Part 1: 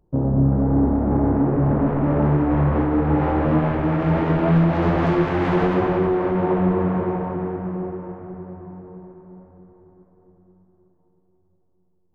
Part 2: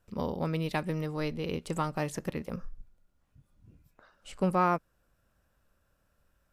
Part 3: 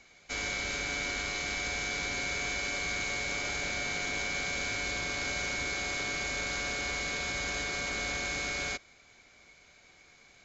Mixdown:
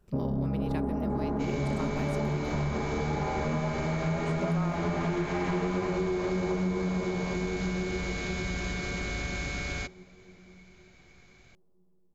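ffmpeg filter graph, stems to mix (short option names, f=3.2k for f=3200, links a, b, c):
-filter_complex "[0:a]aecho=1:1:4.9:0.74,volume=-3.5dB[a];[1:a]volume=-1dB[b];[2:a]bass=f=250:g=12,treble=f=4k:g=-4,adelay=1100,volume=-1dB[c];[a][b][c]amix=inputs=3:normalize=0,acompressor=threshold=-28dB:ratio=4"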